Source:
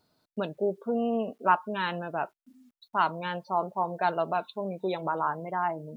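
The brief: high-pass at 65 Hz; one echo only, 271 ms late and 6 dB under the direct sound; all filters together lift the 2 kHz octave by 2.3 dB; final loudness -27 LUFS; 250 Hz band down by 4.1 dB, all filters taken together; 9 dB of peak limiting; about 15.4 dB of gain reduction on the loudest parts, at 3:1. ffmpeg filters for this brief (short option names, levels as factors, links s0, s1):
-af "highpass=65,equalizer=f=250:t=o:g=-5.5,equalizer=f=2000:t=o:g=3.5,acompressor=threshold=0.0126:ratio=3,alimiter=level_in=2.66:limit=0.0631:level=0:latency=1,volume=0.376,aecho=1:1:271:0.501,volume=6.31"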